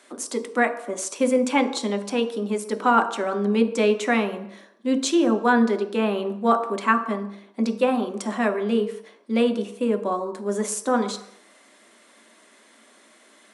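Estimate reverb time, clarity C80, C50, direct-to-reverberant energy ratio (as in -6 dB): not exponential, 13.5 dB, 11.5 dB, 5.0 dB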